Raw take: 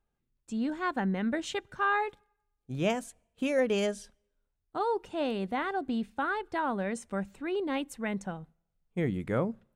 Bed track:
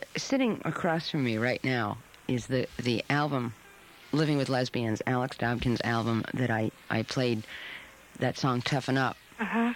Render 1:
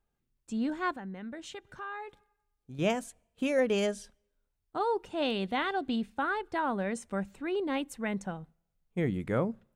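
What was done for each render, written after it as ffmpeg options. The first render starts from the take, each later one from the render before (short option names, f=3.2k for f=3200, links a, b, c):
-filter_complex "[0:a]asettb=1/sr,asplit=3[a][b][c];[a]atrim=end=0.964[d];[b]atrim=start=0.96:end=2.79,asetpts=PTS-STARTPTS,afade=t=in:d=0.004:c=qsin,afade=t=out:st=1.826:d=0.004:c=qsin,acompressor=threshold=-47dB:ratio=2:attack=3.2:release=140:knee=1:detection=peak[e];[c]atrim=start=2.786[f];[d][e]acrossfade=d=0.004:c1=hsin:c2=qsin[g];[g][f]acrossfade=d=0.004:c1=qsin:c2=hsin,asettb=1/sr,asplit=3[h][i][j];[h]atrim=end=5.224[k];[i]atrim=start=5.22:end=5.96,asetpts=PTS-STARTPTS,afade=t=in:d=0.004:c=qsin,afade=t=out:st=0.736:d=0.004:c=qsin,equalizer=f=3.4k:w=1.3:g=9[l];[j]atrim=start=5.956[m];[k][l]acrossfade=d=0.004:c1=hsin:c2=qsin[n];[n][m]acrossfade=d=0.004:c1=qsin:c2=hsin"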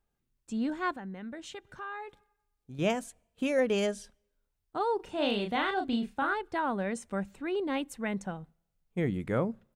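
-filter_complex "[0:a]asplit=3[a][b][c];[a]afade=t=out:st=4.99:d=0.02[d];[b]asplit=2[e][f];[f]adelay=34,volume=-4.5dB[g];[e][g]amix=inputs=2:normalize=0,afade=t=in:st=4.99:d=0.02,afade=t=out:st=6.33:d=0.02[h];[c]afade=t=in:st=6.33:d=0.02[i];[d][h][i]amix=inputs=3:normalize=0"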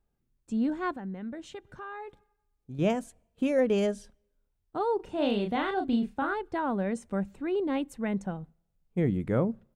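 -af "tiltshelf=f=840:g=4.5"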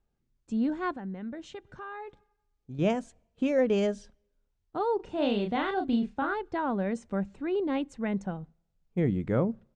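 -af "lowpass=f=7.3k:w=0.5412,lowpass=f=7.3k:w=1.3066"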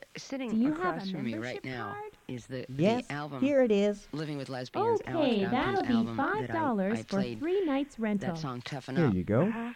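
-filter_complex "[1:a]volume=-9.5dB[a];[0:a][a]amix=inputs=2:normalize=0"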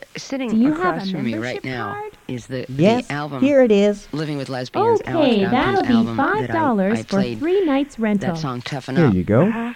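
-af "volume=11.5dB"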